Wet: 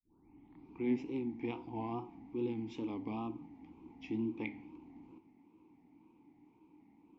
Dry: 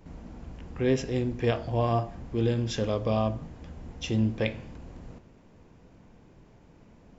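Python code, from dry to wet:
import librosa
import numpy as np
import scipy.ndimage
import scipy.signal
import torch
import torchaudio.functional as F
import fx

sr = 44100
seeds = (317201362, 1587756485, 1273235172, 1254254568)

y = fx.tape_start_head(x, sr, length_s=0.86)
y = fx.vowel_filter(y, sr, vowel='u')
y = fx.wow_flutter(y, sr, seeds[0], rate_hz=2.1, depth_cents=100.0)
y = y * librosa.db_to_amplitude(3.0)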